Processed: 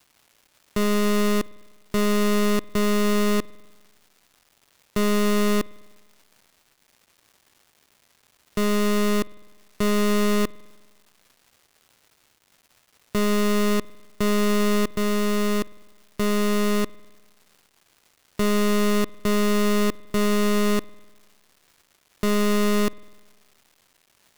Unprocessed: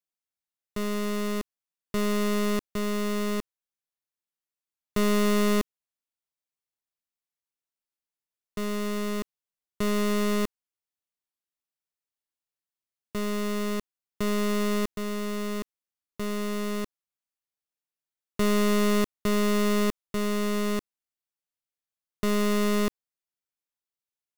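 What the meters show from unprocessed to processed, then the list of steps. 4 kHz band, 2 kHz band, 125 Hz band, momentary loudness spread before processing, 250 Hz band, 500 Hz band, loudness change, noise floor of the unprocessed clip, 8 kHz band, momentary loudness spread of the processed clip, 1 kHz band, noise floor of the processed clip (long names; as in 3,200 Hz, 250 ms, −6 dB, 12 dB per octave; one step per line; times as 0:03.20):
+5.0 dB, +5.0 dB, +5.0 dB, 11 LU, +5.0 dB, +5.0 dB, +4.5 dB, below −85 dBFS, +5.0 dB, 8 LU, +5.0 dB, −65 dBFS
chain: surface crackle 480 per second −54 dBFS
brickwall limiter −28 dBFS, peak gain reduction 6.5 dB
spring reverb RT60 1.4 s, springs 50 ms, chirp 40 ms, DRR 19.5 dB
level +8.5 dB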